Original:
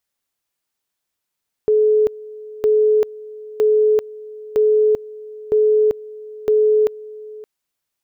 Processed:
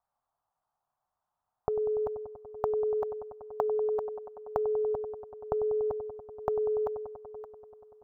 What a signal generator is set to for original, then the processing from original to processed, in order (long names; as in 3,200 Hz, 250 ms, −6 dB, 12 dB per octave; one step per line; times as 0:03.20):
tone at two levels in turn 428 Hz −11 dBFS, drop 20.5 dB, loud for 0.39 s, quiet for 0.57 s, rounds 6
downward compressor 2.5 to 1, threshold −25 dBFS
drawn EQ curve 130 Hz 0 dB, 340 Hz −12 dB, 510 Hz −5 dB, 730 Hz +11 dB, 1,200 Hz +5 dB, 2,200 Hz −20 dB
delay with a low-pass on its return 96 ms, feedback 85%, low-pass 1,100 Hz, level −13.5 dB